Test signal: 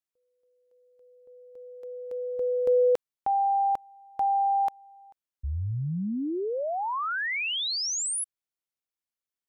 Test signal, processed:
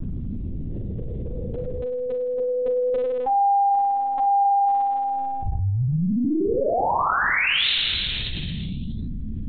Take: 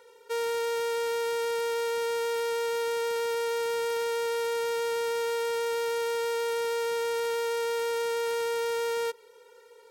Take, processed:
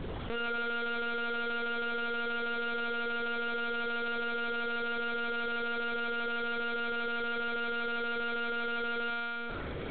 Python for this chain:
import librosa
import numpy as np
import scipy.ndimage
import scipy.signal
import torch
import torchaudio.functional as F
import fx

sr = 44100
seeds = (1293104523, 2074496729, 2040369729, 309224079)

y = fx.high_shelf(x, sr, hz=2100.0, db=3.0)
y = fx.add_hum(y, sr, base_hz=50, snr_db=16)
y = fx.room_flutter(y, sr, wall_m=5.4, rt60_s=1.4)
y = fx.lpc_vocoder(y, sr, seeds[0], excitation='pitch_kept', order=10)
y = fx.env_flatten(y, sr, amount_pct=70)
y = F.gain(torch.from_numpy(y), -6.0).numpy()